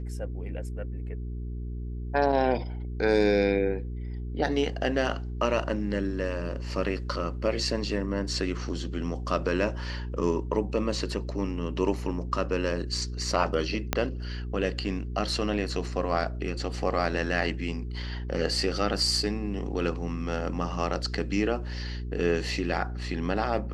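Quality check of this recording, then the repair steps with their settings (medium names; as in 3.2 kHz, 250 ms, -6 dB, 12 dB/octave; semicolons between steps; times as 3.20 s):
hum 60 Hz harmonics 7 -34 dBFS
13.93 s: pop -8 dBFS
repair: de-click; de-hum 60 Hz, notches 7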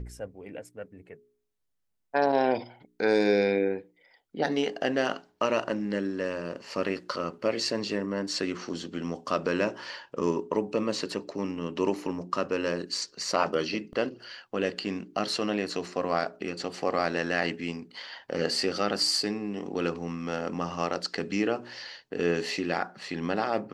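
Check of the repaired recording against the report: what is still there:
13.93 s: pop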